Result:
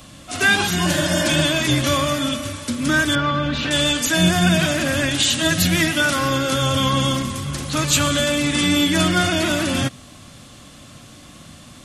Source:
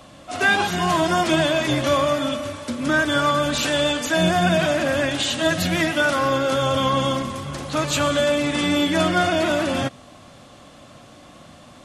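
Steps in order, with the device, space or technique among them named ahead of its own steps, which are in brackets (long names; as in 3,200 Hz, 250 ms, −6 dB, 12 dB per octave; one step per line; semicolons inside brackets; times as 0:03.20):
0:00.89–0:01.40: healed spectral selection 290–2,000 Hz after
smiley-face EQ (low-shelf EQ 170 Hz +3.5 dB; parametric band 670 Hz −8.5 dB 1.7 octaves; high-shelf EQ 6,900 Hz +8.5 dB)
0:03.15–0:03.71: high-frequency loss of the air 270 metres
level +4 dB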